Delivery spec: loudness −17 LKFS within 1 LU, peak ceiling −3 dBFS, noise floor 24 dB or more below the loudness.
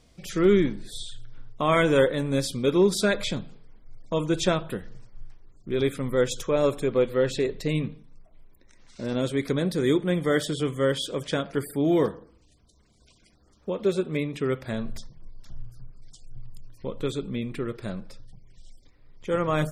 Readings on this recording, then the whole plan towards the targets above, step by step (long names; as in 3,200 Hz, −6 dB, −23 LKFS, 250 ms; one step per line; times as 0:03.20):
integrated loudness −26.0 LKFS; sample peak −8.0 dBFS; target loudness −17.0 LKFS
→ level +9 dB
brickwall limiter −3 dBFS